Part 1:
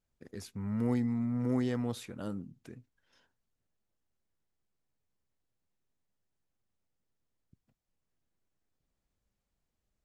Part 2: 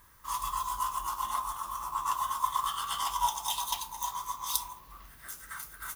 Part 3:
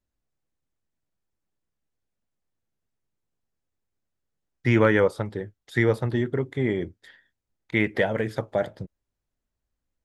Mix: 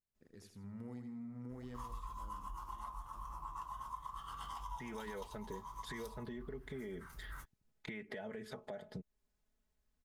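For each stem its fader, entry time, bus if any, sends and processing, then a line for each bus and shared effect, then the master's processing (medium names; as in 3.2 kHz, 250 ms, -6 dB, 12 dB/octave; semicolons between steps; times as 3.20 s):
-14.0 dB, 0.00 s, no send, echo send -6.5 dB, none
-5.5 dB, 1.50 s, no send, no echo send, tilt EQ -3.5 dB/octave; band-stop 3.5 kHz, Q 16; vibrato 0.39 Hz 9.9 cents
-1.5 dB, 0.15 s, no send, no echo send, comb 4.7 ms, depth 71%; compression, threshold -28 dBFS, peak gain reduction 13.5 dB; peak limiter -25.5 dBFS, peak gain reduction 10.5 dB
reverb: none
echo: feedback delay 81 ms, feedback 28%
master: compression 4:1, threshold -44 dBFS, peak gain reduction 14.5 dB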